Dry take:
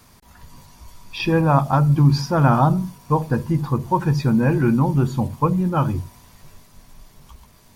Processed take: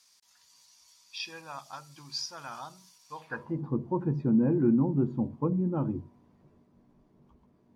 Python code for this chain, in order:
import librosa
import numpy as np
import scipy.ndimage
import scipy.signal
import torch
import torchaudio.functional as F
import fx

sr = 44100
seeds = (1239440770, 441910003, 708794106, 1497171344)

y = fx.filter_sweep_bandpass(x, sr, from_hz=5500.0, to_hz=290.0, start_s=3.1, end_s=3.64, q=1.6)
y = F.gain(torch.from_numpy(y), -3.0).numpy()